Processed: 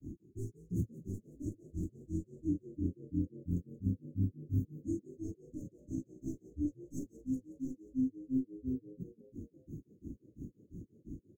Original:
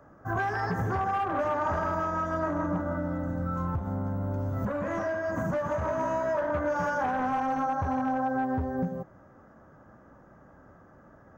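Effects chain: tracing distortion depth 0.041 ms; Chebyshev band-stop 350–6600 Hz, order 5; peaking EQ 170 Hz -3.5 dB; upward compressor, threshold -35 dBFS; granulator 179 ms, grains 2.9 per s, spray 14 ms, pitch spread up and down by 0 st; frequency-shifting echo 179 ms, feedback 58%, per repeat +52 Hz, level -17 dB; trim +4.5 dB

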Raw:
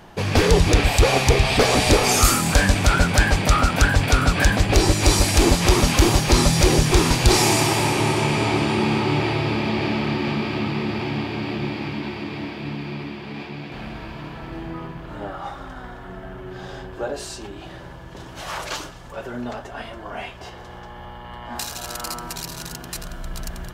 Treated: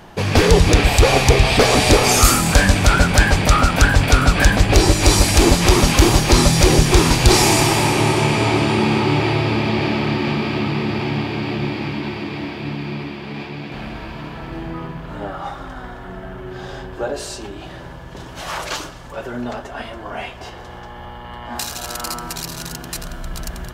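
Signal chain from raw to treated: on a send: tilt EQ -1.5 dB/octave + reverberation RT60 1.7 s, pre-delay 102 ms, DRR 19.5 dB; on the sum: trim +3.5 dB

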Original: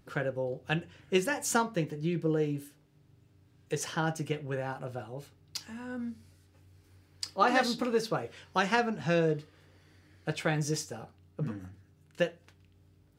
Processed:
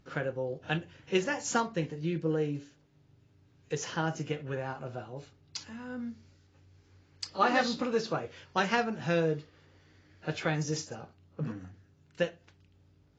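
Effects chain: trim -1 dB; AAC 24 kbps 16 kHz

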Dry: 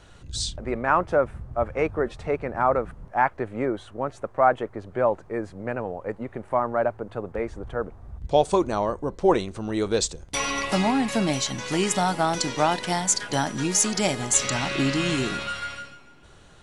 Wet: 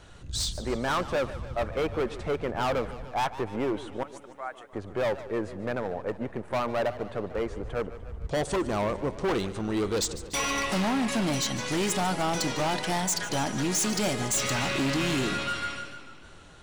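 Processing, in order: 4.03–4.73 s: differentiator; overload inside the chain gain 24 dB; modulated delay 148 ms, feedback 65%, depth 129 cents, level -15 dB

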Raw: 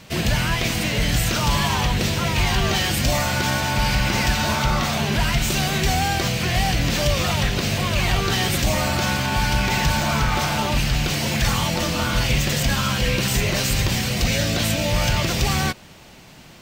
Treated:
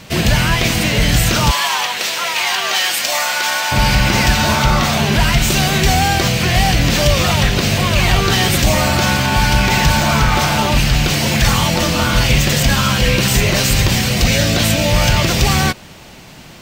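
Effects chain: 1.51–3.72 s: high-pass 780 Hz 12 dB/octave; trim +7 dB

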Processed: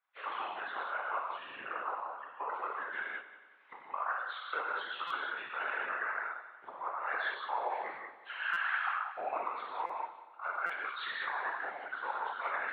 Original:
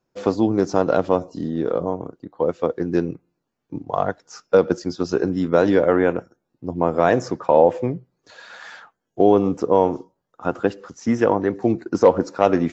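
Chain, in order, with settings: knee-point frequency compression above 1.5 kHz 1.5:1; recorder AGC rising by 35 dB/s; high-pass 1.1 kHz 24 dB/octave; reverb removal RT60 0.94 s; low-pass 2.6 kHz 24 dB/octave; reverse; compression 16:1, threshold -34 dBFS, peak gain reduction 19 dB; reverse; gated-style reverb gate 240 ms flat, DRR -4.5 dB; whisper effect; on a send: multi-head delay 92 ms, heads first and second, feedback 54%, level -17 dB; on the sum: buffer glitch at 5.07/8.53/9.86/10.66 s, samples 256, times 5; trim -2.5 dB

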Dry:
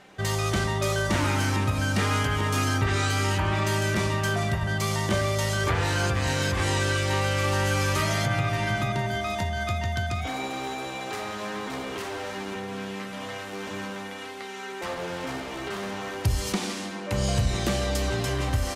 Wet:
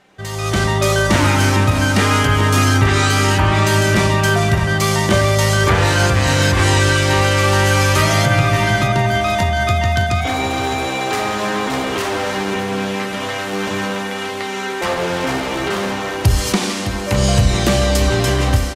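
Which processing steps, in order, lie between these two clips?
level rider gain up to 15 dB; on a send: delay 610 ms -11.5 dB; on the sum: trim -2 dB

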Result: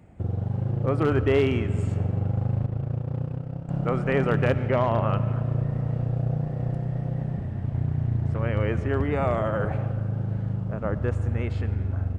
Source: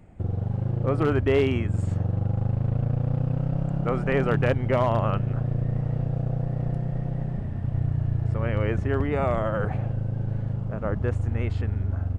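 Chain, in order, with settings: high-pass 52 Hz; 2.66–3.69 s: gate -23 dBFS, range -12 dB; 4.68–5.10 s: distance through air 87 m; reverberation RT60 2.6 s, pre-delay 50 ms, DRR 13 dB; 7.56–8.39 s: loudspeaker Doppler distortion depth 0.41 ms

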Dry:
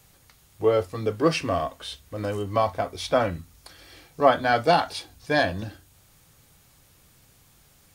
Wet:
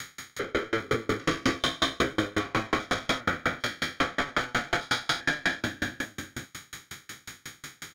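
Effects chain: spectrogram pixelated in time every 400 ms; overdrive pedal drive 31 dB, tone 3.7 kHz, clips at -13 dBFS; reverberation RT60 0.45 s, pre-delay 3 ms, DRR 11 dB; peak limiter -12 dBFS, peak gain reduction 6.5 dB; 1.32–2.16 s: doubling 15 ms -3.5 dB; echo from a far wall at 76 m, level -7 dB; sawtooth tremolo in dB decaying 5.5 Hz, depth 33 dB

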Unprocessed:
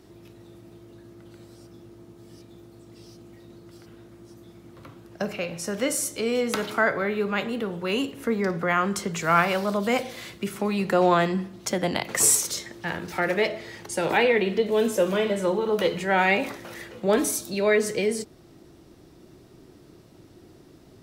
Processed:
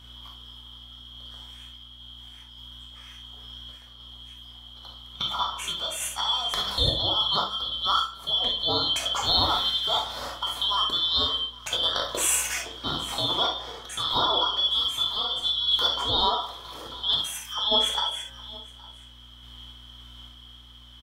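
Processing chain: four frequency bands reordered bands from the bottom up 2413; peaking EQ 1.1 kHz +14 dB 1.2 oct; de-hum 67.8 Hz, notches 30; compression 1.5:1, threshold -31 dBFS, peak gain reduction 7 dB; delay 816 ms -20.5 dB; hum 60 Hz, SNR 23 dB; random-step tremolo; gated-style reverb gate 90 ms flat, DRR 1 dB

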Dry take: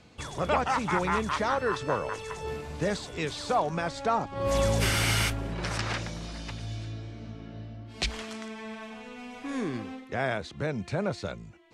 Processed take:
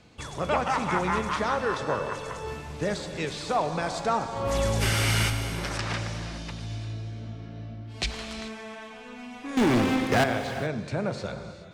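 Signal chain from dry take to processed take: 3.82–4.40 s: treble shelf 5.7 kHz +9 dB; 9.57–10.24 s: waveshaping leveller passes 5; reverberation, pre-delay 3 ms, DRR 7 dB

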